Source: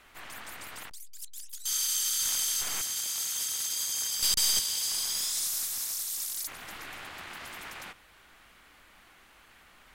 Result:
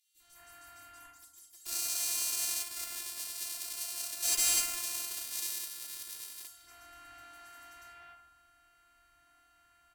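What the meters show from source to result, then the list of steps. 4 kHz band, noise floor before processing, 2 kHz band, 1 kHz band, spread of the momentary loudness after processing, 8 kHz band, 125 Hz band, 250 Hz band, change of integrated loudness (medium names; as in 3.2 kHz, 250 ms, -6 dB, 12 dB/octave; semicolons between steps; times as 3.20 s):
-7.5 dB, -58 dBFS, -3.5 dB, -4.0 dB, 24 LU, -5.0 dB, under -10 dB, -5.0 dB, -4.5 dB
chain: peaking EQ 350 Hz -7.5 dB 0.62 oct; robot voice 346 Hz; three bands offset in time highs, lows, mids 150/200 ms, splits 430/3500 Hz; FDN reverb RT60 0.88 s, low-frequency decay 1.55×, high-frequency decay 0.45×, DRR -5 dB; Chebyshev shaper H 7 -14 dB, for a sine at -10 dBFS; trim -4.5 dB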